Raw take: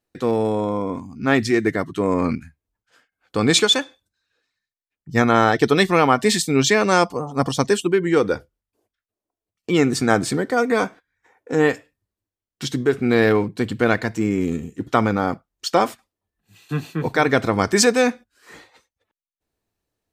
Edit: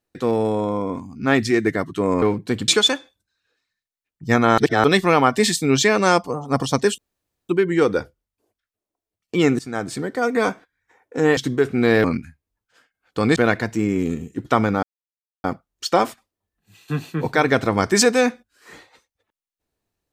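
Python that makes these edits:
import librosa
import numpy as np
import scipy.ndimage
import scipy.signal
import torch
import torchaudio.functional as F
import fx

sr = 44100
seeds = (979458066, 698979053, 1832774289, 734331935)

y = fx.edit(x, sr, fx.swap(start_s=2.22, length_s=1.32, other_s=13.32, other_length_s=0.46),
    fx.reverse_span(start_s=5.44, length_s=0.26),
    fx.insert_room_tone(at_s=7.84, length_s=0.51),
    fx.fade_in_from(start_s=9.94, length_s=0.86, floor_db=-15.5),
    fx.cut(start_s=11.72, length_s=0.93),
    fx.insert_silence(at_s=15.25, length_s=0.61), tone=tone)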